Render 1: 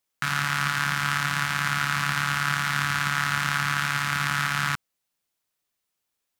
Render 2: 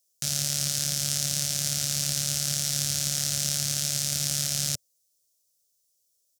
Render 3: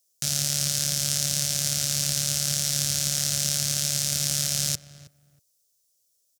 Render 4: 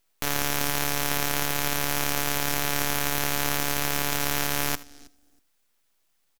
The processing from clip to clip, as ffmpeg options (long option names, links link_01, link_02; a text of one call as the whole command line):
ffmpeg -i in.wav -af "firequalizer=gain_entry='entry(110,0);entry(210,-8);entry(580,5);entry(960,-28);entry(3300,-3);entry(5600,12);entry(13000,9)':delay=0.05:min_phase=1" out.wav
ffmpeg -i in.wav -filter_complex "[0:a]asplit=2[link_01][link_02];[link_02]adelay=319,lowpass=frequency=1400:poles=1,volume=-14.5dB,asplit=2[link_03][link_04];[link_04]adelay=319,lowpass=frequency=1400:poles=1,volume=0.21[link_05];[link_01][link_03][link_05]amix=inputs=3:normalize=0,volume=2dB" out.wav
ffmpeg -i in.wav -af "aeval=exprs='abs(val(0))':channel_layout=same,aecho=1:1:78:0.119" out.wav